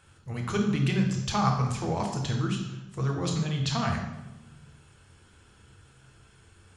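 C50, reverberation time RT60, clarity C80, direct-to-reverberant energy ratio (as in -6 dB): 5.0 dB, 1.1 s, 7.5 dB, 1.0 dB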